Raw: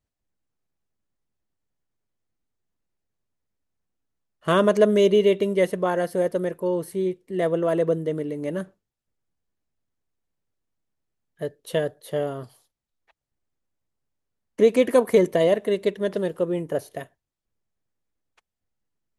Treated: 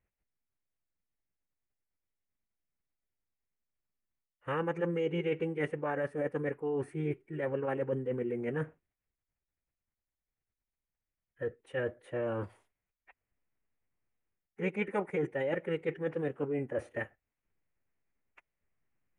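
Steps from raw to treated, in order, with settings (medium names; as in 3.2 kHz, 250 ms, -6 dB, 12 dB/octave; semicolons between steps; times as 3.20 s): resonant high shelf 3.1 kHz -11 dB, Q 3; reverse; compression 5:1, threshold -31 dBFS, peak gain reduction 17.5 dB; reverse; formant-preserving pitch shift -3.5 st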